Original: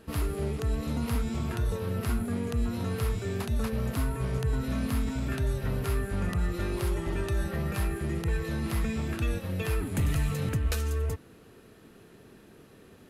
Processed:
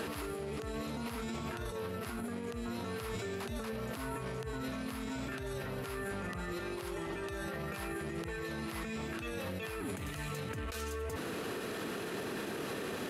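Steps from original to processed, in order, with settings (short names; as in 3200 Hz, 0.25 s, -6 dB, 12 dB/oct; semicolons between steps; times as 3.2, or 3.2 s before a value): HPF 410 Hz 6 dB/oct; high shelf 7700 Hz -5.5 dB; negative-ratio compressor -49 dBFS, ratio -1; limiter -43 dBFS, peak gain reduction 10.5 dB; gain +12.5 dB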